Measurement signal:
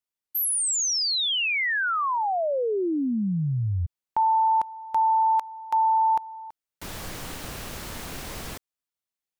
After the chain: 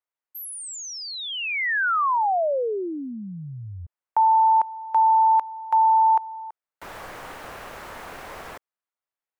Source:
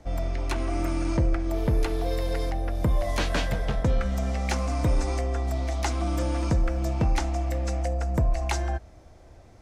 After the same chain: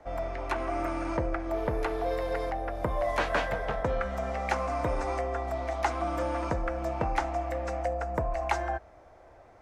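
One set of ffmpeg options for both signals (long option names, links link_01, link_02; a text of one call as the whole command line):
ffmpeg -i in.wav -filter_complex "[0:a]acrossover=split=450 2100:gain=0.178 1 0.178[link_01][link_02][link_03];[link_01][link_02][link_03]amix=inputs=3:normalize=0,volume=4.5dB" out.wav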